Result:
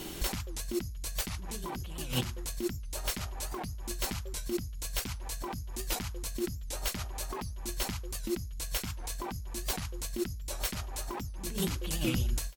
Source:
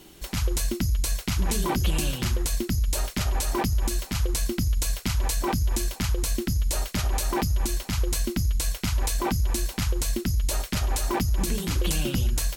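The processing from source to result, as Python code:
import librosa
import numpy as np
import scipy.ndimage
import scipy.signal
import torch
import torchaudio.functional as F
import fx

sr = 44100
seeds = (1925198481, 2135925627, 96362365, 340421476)

y = fx.fade_out_tail(x, sr, length_s=1.13)
y = fx.dynamic_eq(y, sr, hz=910.0, q=1.8, threshold_db=-42.0, ratio=4.0, max_db=3)
y = fx.over_compress(y, sr, threshold_db=-35.0, ratio=-1.0)
y = fx.record_warp(y, sr, rpm=78.0, depth_cents=160.0)
y = y * 10.0 ** (-1.0 / 20.0)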